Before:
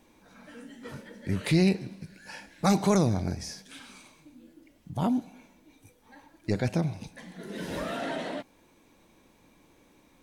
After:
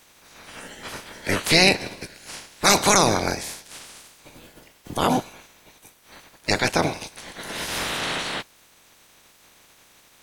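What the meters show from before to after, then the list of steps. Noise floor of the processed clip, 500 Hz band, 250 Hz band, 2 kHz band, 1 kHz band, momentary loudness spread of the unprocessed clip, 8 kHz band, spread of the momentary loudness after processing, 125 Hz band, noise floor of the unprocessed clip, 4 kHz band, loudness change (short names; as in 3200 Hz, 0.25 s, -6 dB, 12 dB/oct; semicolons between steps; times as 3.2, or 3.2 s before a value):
-56 dBFS, +6.5 dB, 0.0 dB, +15.0 dB, +11.0 dB, 21 LU, +17.0 dB, 22 LU, -2.0 dB, -62 dBFS, +17.0 dB, +7.5 dB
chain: spectral limiter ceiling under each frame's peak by 25 dB; gain +6 dB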